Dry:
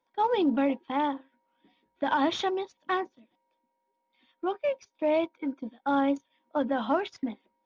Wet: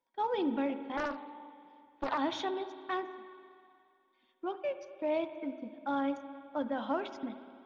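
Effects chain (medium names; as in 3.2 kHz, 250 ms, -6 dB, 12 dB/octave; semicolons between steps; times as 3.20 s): spring tank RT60 2.4 s, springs 51/59 ms, chirp 35 ms, DRR 10 dB; 0.97–2.18 s: loudspeaker Doppler distortion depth 0.63 ms; trim -7 dB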